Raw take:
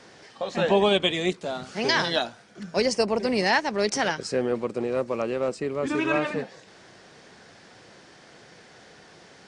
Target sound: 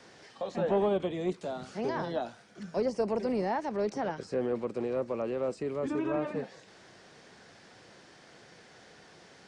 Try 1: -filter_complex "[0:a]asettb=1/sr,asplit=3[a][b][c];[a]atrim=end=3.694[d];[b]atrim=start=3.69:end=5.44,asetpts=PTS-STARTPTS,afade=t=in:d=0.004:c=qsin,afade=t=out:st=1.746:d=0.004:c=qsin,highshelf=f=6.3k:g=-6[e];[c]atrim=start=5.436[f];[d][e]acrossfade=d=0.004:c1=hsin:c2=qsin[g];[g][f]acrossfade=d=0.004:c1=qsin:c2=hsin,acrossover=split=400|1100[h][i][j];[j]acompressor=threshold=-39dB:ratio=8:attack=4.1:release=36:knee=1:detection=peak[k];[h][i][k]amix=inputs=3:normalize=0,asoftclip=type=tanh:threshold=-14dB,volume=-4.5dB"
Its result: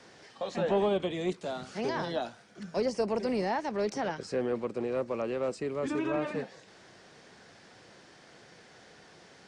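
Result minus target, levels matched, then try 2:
compressor: peak gain reduction -6.5 dB
-filter_complex "[0:a]asettb=1/sr,asplit=3[a][b][c];[a]atrim=end=3.694[d];[b]atrim=start=3.69:end=5.44,asetpts=PTS-STARTPTS,afade=t=in:d=0.004:c=qsin,afade=t=out:st=1.746:d=0.004:c=qsin,highshelf=f=6.3k:g=-6[e];[c]atrim=start=5.436[f];[d][e]acrossfade=d=0.004:c1=hsin:c2=qsin[g];[g][f]acrossfade=d=0.004:c1=qsin:c2=hsin,acrossover=split=400|1100[h][i][j];[j]acompressor=threshold=-46.5dB:ratio=8:attack=4.1:release=36:knee=1:detection=peak[k];[h][i][k]amix=inputs=3:normalize=0,asoftclip=type=tanh:threshold=-14dB,volume=-4.5dB"

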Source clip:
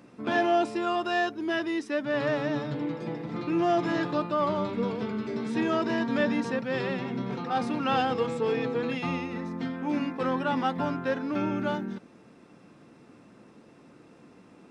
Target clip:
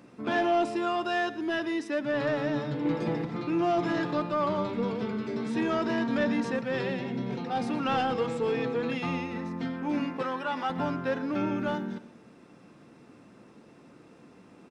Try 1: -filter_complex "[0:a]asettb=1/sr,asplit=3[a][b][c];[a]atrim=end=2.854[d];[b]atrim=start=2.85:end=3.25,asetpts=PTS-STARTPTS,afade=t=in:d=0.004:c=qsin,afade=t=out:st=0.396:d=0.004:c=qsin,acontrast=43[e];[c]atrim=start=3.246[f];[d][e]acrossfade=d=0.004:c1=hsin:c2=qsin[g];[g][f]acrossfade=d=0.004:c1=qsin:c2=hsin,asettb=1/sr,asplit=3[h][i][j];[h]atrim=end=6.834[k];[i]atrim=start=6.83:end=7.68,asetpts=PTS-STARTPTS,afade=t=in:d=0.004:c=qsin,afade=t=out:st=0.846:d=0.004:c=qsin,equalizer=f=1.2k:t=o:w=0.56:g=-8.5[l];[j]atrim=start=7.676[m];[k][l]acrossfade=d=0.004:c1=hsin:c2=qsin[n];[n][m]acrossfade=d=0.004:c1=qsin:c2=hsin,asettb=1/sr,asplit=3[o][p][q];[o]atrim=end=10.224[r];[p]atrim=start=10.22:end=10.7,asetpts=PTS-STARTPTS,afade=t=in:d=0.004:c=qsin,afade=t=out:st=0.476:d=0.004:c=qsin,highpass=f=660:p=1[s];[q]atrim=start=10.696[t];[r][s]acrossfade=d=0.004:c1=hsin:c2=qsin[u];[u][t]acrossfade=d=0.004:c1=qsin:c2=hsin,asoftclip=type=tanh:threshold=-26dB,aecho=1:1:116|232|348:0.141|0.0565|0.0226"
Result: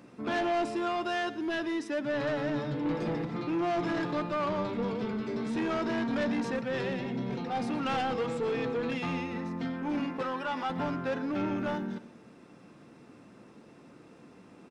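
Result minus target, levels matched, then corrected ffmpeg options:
soft clip: distortion +9 dB
-filter_complex "[0:a]asettb=1/sr,asplit=3[a][b][c];[a]atrim=end=2.854[d];[b]atrim=start=2.85:end=3.25,asetpts=PTS-STARTPTS,afade=t=in:d=0.004:c=qsin,afade=t=out:st=0.396:d=0.004:c=qsin,acontrast=43[e];[c]atrim=start=3.246[f];[d][e]acrossfade=d=0.004:c1=hsin:c2=qsin[g];[g][f]acrossfade=d=0.004:c1=qsin:c2=hsin,asettb=1/sr,asplit=3[h][i][j];[h]atrim=end=6.834[k];[i]atrim=start=6.83:end=7.68,asetpts=PTS-STARTPTS,afade=t=in:d=0.004:c=qsin,afade=t=out:st=0.846:d=0.004:c=qsin,equalizer=f=1.2k:t=o:w=0.56:g=-8.5[l];[j]atrim=start=7.676[m];[k][l]acrossfade=d=0.004:c1=hsin:c2=qsin[n];[n][m]acrossfade=d=0.004:c1=qsin:c2=hsin,asettb=1/sr,asplit=3[o][p][q];[o]atrim=end=10.224[r];[p]atrim=start=10.22:end=10.7,asetpts=PTS-STARTPTS,afade=t=in:d=0.004:c=qsin,afade=t=out:st=0.476:d=0.004:c=qsin,highpass=f=660:p=1[s];[q]atrim=start=10.696[t];[r][s]acrossfade=d=0.004:c1=hsin:c2=qsin[u];[u][t]acrossfade=d=0.004:c1=qsin:c2=hsin,asoftclip=type=tanh:threshold=-18.5dB,aecho=1:1:116|232|348:0.141|0.0565|0.0226"

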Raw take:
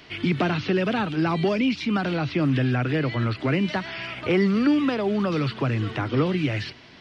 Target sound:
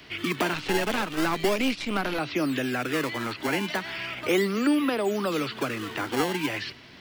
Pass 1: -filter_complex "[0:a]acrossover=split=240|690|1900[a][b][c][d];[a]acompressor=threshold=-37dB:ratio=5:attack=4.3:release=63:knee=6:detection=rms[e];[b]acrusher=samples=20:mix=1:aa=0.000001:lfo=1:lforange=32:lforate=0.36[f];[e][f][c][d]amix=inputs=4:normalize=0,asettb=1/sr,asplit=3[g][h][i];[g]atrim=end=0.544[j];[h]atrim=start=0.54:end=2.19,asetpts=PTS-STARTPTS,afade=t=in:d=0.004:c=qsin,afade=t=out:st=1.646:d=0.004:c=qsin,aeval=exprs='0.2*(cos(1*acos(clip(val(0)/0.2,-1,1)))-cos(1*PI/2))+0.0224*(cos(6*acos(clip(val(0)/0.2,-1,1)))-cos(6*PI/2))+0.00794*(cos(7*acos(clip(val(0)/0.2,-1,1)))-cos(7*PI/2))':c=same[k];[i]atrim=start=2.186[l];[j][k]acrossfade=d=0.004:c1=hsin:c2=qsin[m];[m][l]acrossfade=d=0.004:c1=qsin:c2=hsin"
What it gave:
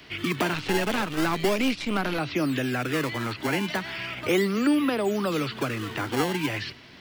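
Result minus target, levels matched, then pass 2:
compressor: peak gain reduction -9 dB
-filter_complex "[0:a]acrossover=split=240|690|1900[a][b][c][d];[a]acompressor=threshold=-48dB:ratio=5:attack=4.3:release=63:knee=6:detection=rms[e];[b]acrusher=samples=20:mix=1:aa=0.000001:lfo=1:lforange=32:lforate=0.36[f];[e][f][c][d]amix=inputs=4:normalize=0,asettb=1/sr,asplit=3[g][h][i];[g]atrim=end=0.544[j];[h]atrim=start=0.54:end=2.19,asetpts=PTS-STARTPTS,afade=t=in:d=0.004:c=qsin,afade=t=out:st=1.646:d=0.004:c=qsin,aeval=exprs='0.2*(cos(1*acos(clip(val(0)/0.2,-1,1)))-cos(1*PI/2))+0.0224*(cos(6*acos(clip(val(0)/0.2,-1,1)))-cos(6*PI/2))+0.00794*(cos(7*acos(clip(val(0)/0.2,-1,1)))-cos(7*PI/2))':c=same[k];[i]atrim=start=2.186[l];[j][k]acrossfade=d=0.004:c1=hsin:c2=qsin[m];[m][l]acrossfade=d=0.004:c1=qsin:c2=hsin"

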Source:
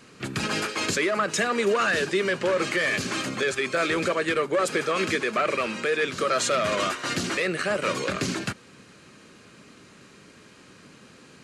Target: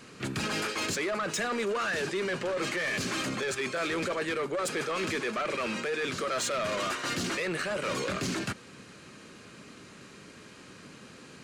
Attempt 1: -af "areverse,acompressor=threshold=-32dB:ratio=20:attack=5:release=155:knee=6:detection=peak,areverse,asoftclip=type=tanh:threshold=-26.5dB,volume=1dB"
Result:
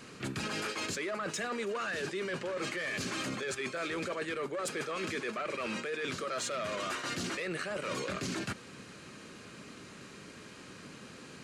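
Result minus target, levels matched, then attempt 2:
compressor: peak gain reduction +7.5 dB
-af "areverse,acompressor=threshold=-24dB:ratio=20:attack=5:release=155:knee=6:detection=peak,areverse,asoftclip=type=tanh:threshold=-26.5dB,volume=1dB"

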